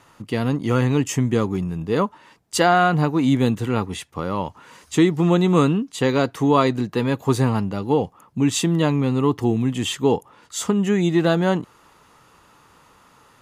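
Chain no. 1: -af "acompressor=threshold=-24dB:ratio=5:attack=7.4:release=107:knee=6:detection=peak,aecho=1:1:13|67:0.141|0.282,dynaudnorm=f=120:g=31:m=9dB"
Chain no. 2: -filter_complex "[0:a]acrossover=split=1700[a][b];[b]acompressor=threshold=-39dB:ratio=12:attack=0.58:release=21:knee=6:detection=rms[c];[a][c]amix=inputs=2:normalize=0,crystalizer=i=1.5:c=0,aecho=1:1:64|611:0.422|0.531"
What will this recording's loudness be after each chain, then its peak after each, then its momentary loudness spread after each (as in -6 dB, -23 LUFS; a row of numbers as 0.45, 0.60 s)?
-20.0, -19.5 LUFS; -4.5, -2.5 dBFS; 10, 9 LU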